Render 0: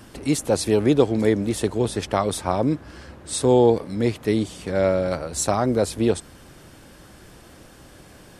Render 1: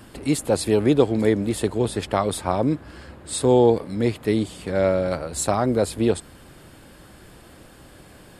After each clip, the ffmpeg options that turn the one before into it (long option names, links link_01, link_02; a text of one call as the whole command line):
ffmpeg -i in.wav -af "equalizer=frequency=5900:width_type=o:width=0.2:gain=-11" out.wav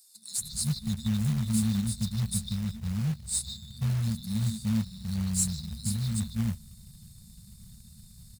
ffmpeg -i in.wav -filter_complex "[0:a]acrossover=split=290|4000[link_01][link_02][link_03];[link_02]adelay=150[link_04];[link_01]adelay=380[link_05];[link_05][link_04][link_03]amix=inputs=3:normalize=0,afftfilt=real='re*(1-between(b*sr/4096,230,3500))':imag='im*(1-between(b*sr/4096,230,3500))':win_size=4096:overlap=0.75,acrusher=bits=4:mode=log:mix=0:aa=0.000001" out.wav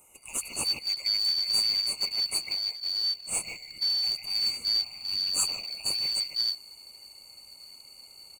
ffmpeg -i in.wav -af "afftfilt=real='real(if(lt(b,272),68*(eq(floor(b/68),0)*3+eq(floor(b/68),1)*2+eq(floor(b/68),2)*1+eq(floor(b/68),3)*0)+mod(b,68),b),0)':imag='imag(if(lt(b,272),68*(eq(floor(b/68),0)*3+eq(floor(b/68),1)*2+eq(floor(b/68),2)*1+eq(floor(b/68),3)*0)+mod(b,68),b),0)':win_size=2048:overlap=0.75" out.wav